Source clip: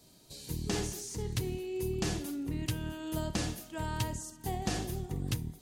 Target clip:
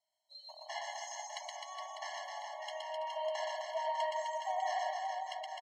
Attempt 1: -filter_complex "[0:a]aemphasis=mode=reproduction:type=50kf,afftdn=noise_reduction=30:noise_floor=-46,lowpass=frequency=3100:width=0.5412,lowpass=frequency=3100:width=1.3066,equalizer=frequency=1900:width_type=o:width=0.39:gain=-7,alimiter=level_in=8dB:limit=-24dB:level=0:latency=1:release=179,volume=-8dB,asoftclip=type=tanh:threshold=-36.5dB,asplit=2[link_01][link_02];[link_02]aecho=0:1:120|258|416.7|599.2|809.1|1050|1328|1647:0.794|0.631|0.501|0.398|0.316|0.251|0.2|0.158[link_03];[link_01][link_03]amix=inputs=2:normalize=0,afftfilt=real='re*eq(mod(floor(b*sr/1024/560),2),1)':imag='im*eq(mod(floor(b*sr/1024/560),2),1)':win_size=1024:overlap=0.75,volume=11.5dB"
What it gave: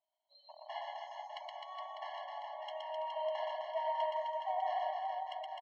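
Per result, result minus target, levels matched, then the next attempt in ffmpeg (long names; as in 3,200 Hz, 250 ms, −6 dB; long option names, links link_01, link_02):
2,000 Hz band −5.5 dB; 4,000 Hz band −4.0 dB
-filter_complex "[0:a]aemphasis=mode=reproduction:type=50kf,afftdn=noise_reduction=30:noise_floor=-46,lowpass=frequency=3100:width=0.5412,lowpass=frequency=3100:width=1.3066,equalizer=frequency=1900:width_type=o:width=0.39:gain=2.5,alimiter=level_in=8dB:limit=-24dB:level=0:latency=1:release=179,volume=-8dB,asoftclip=type=tanh:threshold=-36.5dB,asplit=2[link_01][link_02];[link_02]aecho=0:1:120|258|416.7|599.2|809.1|1050|1328|1647:0.794|0.631|0.501|0.398|0.316|0.251|0.2|0.158[link_03];[link_01][link_03]amix=inputs=2:normalize=0,afftfilt=real='re*eq(mod(floor(b*sr/1024/560),2),1)':imag='im*eq(mod(floor(b*sr/1024/560),2),1)':win_size=1024:overlap=0.75,volume=11.5dB"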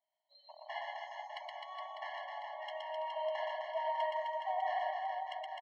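4,000 Hz band −3.5 dB
-filter_complex "[0:a]aemphasis=mode=reproduction:type=50kf,afftdn=noise_reduction=30:noise_floor=-46,equalizer=frequency=1900:width_type=o:width=0.39:gain=2.5,alimiter=level_in=8dB:limit=-24dB:level=0:latency=1:release=179,volume=-8dB,asoftclip=type=tanh:threshold=-36.5dB,asplit=2[link_01][link_02];[link_02]aecho=0:1:120|258|416.7|599.2|809.1|1050|1328|1647:0.794|0.631|0.501|0.398|0.316|0.251|0.2|0.158[link_03];[link_01][link_03]amix=inputs=2:normalize=0,afftfilt=real='re*eq(mod(floor(b*sr/1024/560),2),1)':imag='im*eq(mod(floor(b*sr/1024/560),2),1)':win_size=1024:overlap=0.75,volume=11.5dB"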